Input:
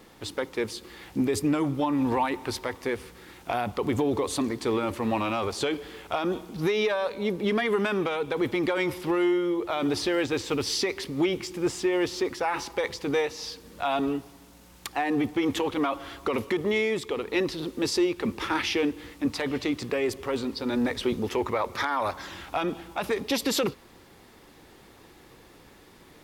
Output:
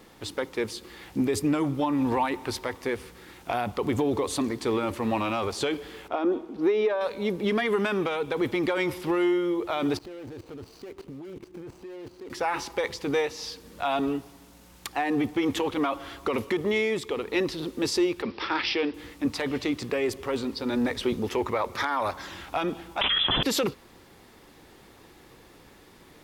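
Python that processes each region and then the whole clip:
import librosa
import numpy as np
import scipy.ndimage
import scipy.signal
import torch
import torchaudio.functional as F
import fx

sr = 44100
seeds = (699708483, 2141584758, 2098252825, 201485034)

y = fx.chain(x, sr, fx.lowpass(hz=1200.0, slope=6),
    fx.low_shelf_res(hz=210.0, db=-9.0, q=3.0), at=(6.08, 7.01))
y = fx.chain(y, sr, fx.median_filter(points=25),
    fx.level_steps(step_db=20),
    fx.transient(attack_db=1, sustain_db=8), at=(9.97, 12.3))
y = fx.chain(y, sr, fx.bass_treble(bass_db=-9, treble_db=3),
    fx.resample_bad(factor=4, down='none', up='filtered'), at=(18.22, 18.94))
y = fx.chain(y, sr, fx.highpass(hz=290.0, slope=12),
    fx.freq_invert(carrier_hz=3700),
    fx.env_flatten(amount_pct=100), at=(23.01, 23.43))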